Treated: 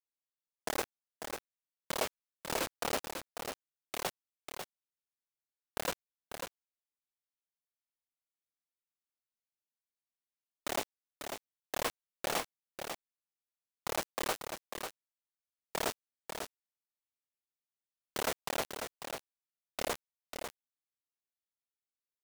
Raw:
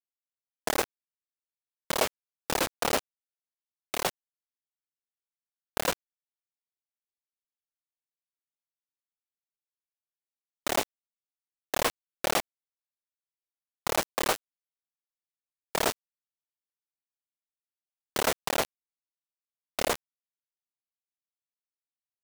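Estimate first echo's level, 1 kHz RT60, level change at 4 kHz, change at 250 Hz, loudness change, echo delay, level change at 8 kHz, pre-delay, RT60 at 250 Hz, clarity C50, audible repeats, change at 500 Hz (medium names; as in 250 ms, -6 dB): -7.0 dB, no reverb, -6.5 dB, -6.5 dB, -9.0 dB, 545 ms, -6.5 dB, no reverb, no reverb, no reverb, 1, -6.5 dB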